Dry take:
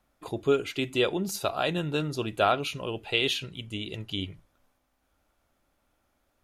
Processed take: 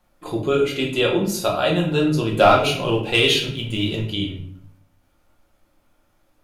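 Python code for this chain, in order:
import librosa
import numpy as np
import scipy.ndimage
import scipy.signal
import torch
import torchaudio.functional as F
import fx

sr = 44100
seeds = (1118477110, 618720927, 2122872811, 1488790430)

y = fx.leveller(x, sr, passes=1, at=(2.29, 4.01))
y = fx.room_shoebox(y, sr, seeds[0], volume_m3=100.0, walls='mixed', distance_m=0.92)
y = y * 10.0 ** (3.5 / 20.0)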